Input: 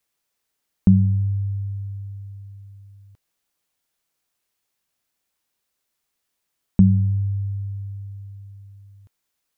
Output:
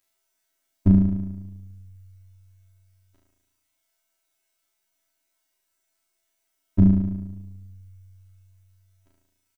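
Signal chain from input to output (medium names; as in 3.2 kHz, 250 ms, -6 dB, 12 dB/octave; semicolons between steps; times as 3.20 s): robot voice 95 Hz; comb 3.1 ms, depth 94%; reverb removal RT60 1 s; on a send: flutter echo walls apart 6.2 m, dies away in 1.1 s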